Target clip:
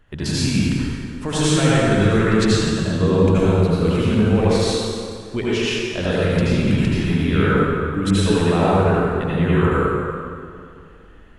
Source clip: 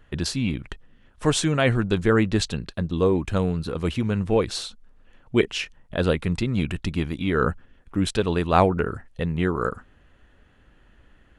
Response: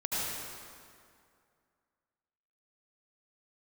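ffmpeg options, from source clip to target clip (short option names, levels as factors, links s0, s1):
-filter_complex "[0:a]alimiter=limit=0.237:level=0:latency=1:release=67[s0];[1:a]atrim=start_sample=2205[s1];[s0][s1]afir=irnorm=-1:irlink=0"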